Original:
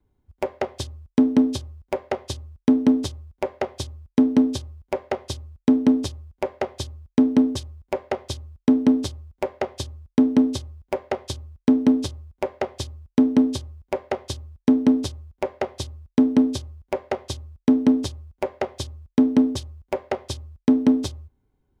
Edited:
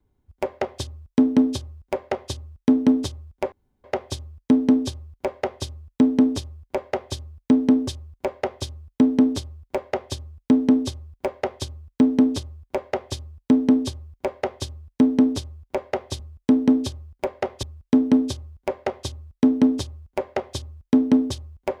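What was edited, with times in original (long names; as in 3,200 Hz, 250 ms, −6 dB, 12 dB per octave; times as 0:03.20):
0:00.89–0:02.32: duplicate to 0:15.88
0:03.52: splice in room tone 0.32 s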